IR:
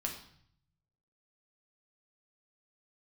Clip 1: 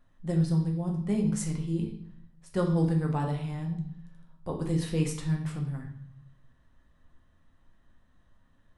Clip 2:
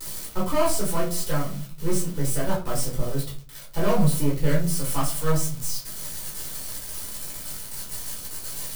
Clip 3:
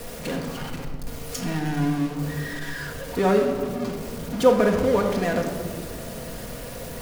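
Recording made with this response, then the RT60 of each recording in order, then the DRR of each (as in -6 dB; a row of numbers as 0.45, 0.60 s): 1; 0.60, 0.45, 2.0 s; 0.5, -6.5, 0.5 dB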